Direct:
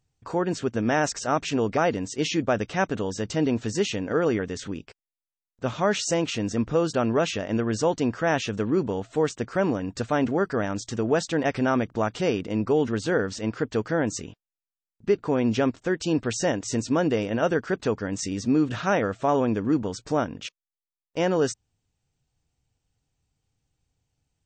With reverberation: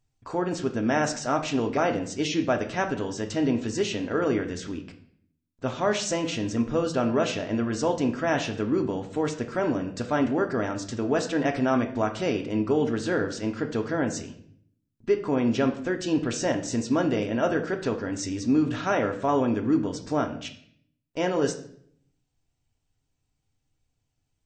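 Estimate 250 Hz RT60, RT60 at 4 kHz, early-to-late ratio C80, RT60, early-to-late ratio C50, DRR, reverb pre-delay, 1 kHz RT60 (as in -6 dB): 0.80 s, 0.55 s, 14.5 dB, 0.60 s, 11.0 dB, 4.0 dB, 3 ms, 0.55 s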